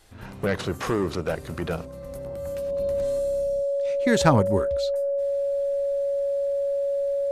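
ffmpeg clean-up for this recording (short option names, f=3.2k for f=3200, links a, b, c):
-af "bandreject=f=560:w=30"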